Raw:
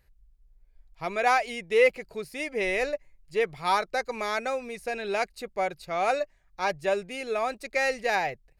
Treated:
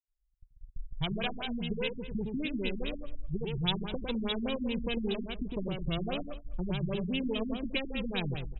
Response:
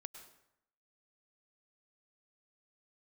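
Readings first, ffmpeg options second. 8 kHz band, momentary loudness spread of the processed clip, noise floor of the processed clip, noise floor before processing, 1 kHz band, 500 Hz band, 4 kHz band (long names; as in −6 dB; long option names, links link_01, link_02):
below −35 dB, 6 LU, −73 dBFS, −63 dBFS, −16.0 dB, −10.5 dB, +2.5 dB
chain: -filter_complex "[0:a]highshelf=frequency=5700:gain=10.5,bandreject=frequency=1300:width=9,asubboost=boost=10:cutoff=240,afftdn=noise_reduction=28:noise_floor=-37,asplit=2[link_01][link_02];[link_02]alimiter=limit=-21.5dB:level=0:latency=1:release=251,volume=1dB[link_03];[link_01][link_03]amix=inputs=2:normalize=0,acompressor=threshold=-30dB:ratio=6,asplit=2[link_04][link_05];[link_05]adelay=103,lowpass=frequency=3700:poles=1,volume=-5.5dB,asplit=2[link_06][link_07];[link_07]adelay=103,lowpass=frequency=3700:poles=1,volume=0.36,asplit=2[link_08][link_09];[link_09]adelay=103,lowpass=frequency=3700:poles=1,volume=0.36,asplit=2[link_10][link_11];[link_11]adelay=103,lowpass=frequency=3700:poles=1,volume=0.36[link_12];[link_04][link_06][link_08][link_10][link_12]amix=inputs=5:normalize=0,acrossover=split=420[link_13][link_14];[link_14]aeval=exprs='max(val(0),0)':channel_layout=same[link_15];[link_13][link_15]amix=inputs=2:normalize=0,aexciter=amount=15.1:drive=4.8:freq=3000,agate=range=-32dB:threshold=-38dB:ratio=16:detection=peak,afftfilt=real='re*lt(b*sr/1024,300*pow(4000/300,0.5+0.5*sin(2*PI*4.9*pts/sr)))':imag='im*lt(b*sr/1024,300*pow(4000/300,0.5+0.5*sin(2*PI*4.9*pts/sr)))':win_size=1024:overlap=0.75"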